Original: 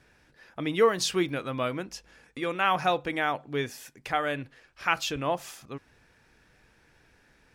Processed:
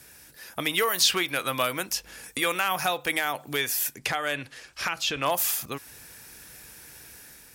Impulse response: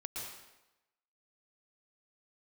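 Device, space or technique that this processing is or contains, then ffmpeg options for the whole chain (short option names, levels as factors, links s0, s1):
FM broadcast chain: -filter_complex "[0:a]asettb=1/sr,asplit=3[s0][s1][s2];[s0]atrim=end=3.974[s3];[s1]atrim=start=3.97:end=5.26,asetpts=PTS-STARTPTS,afade=t=in:d=0.004:c=qsin,afade=t=out:st=1.286:d=0.004:c=qsin,lowpass=6700[s4];[s2]atrim=start=5.256[s5];[s3][s4]acrossfade=d=0.004:c1=hsin:c2=qsin[s6];[s6][s5]acrossfade=d=0.004:c1=qsin:c2=hsin,highpass=42,dynaudnorm=f=400:g=3:m=1.58,acrossover=split=580|4100[s7][s8][s9];[s7]acompressor=threshold=0.01:ratio=4[s10];[s8]acompressor=threshold=0.0447:ratio=4[s11];[s9]acompressor=threshold=0.002:ratio=4[s12];[s10][s11][s12]amix=inputs=3:normalize=0,aemphasis=mode=production:type=50fm,alimiter=limit=0.126:level=0:latency=1:release=348,asoftclip=type=hard:threshold=0.0944,lowpass=f=15000:w=0.5412,lowpass=f=15000:w=1.3066,aemphasis=mode=production:type=50fm,volume=1.68"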